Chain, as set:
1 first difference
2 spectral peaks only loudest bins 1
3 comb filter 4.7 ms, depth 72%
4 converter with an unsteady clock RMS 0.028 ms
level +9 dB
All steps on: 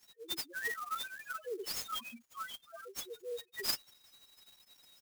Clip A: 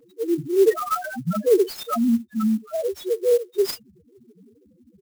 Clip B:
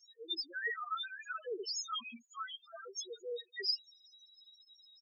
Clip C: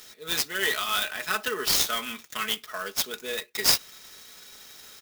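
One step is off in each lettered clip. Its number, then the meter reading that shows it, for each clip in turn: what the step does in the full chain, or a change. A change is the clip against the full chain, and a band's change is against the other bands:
1, 250 Hz band +24.0 dB
4, 4 kHz band +2.5 dB
2, 500 Hz band −4.5 dB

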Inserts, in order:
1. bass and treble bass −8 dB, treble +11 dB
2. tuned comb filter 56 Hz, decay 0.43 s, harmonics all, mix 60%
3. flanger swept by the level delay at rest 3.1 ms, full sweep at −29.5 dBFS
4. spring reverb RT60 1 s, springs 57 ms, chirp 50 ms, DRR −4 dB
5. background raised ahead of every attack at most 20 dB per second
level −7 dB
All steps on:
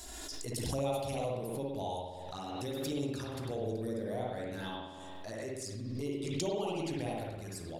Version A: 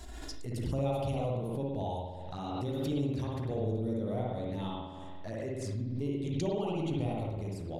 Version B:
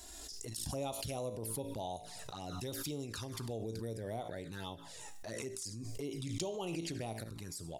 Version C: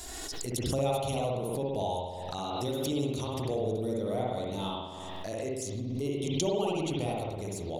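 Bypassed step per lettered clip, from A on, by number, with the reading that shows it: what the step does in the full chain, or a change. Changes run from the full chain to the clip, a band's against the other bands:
1, 8 kHz band −9.0 dB
4, change in momentary loudness spread −2 LU
2, 2 kHz band −3.5 dB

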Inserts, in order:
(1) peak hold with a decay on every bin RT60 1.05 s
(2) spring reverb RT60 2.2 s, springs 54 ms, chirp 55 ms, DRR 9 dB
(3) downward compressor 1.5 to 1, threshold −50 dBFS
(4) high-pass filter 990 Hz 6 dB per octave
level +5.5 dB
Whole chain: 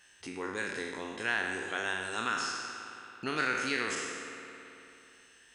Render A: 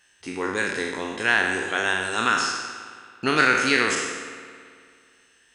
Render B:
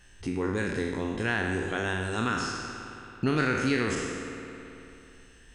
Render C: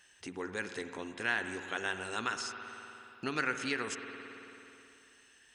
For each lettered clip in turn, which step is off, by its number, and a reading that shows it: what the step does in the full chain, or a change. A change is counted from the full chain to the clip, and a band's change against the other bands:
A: 3, average gain reduction 8.0 dB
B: 4, 125 Hz band +16.0 dB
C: 1, 125 Hz band +3.0 dB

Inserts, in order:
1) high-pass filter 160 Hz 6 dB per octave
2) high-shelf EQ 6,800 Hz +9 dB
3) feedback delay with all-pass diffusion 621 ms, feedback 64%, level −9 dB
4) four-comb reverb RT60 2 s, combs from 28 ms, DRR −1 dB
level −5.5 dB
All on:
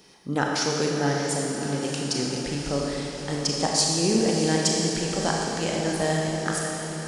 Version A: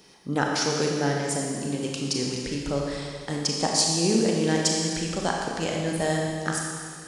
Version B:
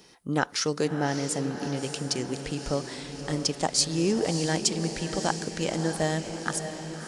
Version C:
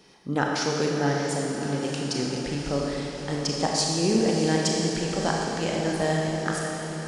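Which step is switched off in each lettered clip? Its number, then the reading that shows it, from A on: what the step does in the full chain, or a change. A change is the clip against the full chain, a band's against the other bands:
3, change in momentary loudness spread +1 LU
4, change in crest factor +3.5 dB
2, 8 kHz band −4.5 dB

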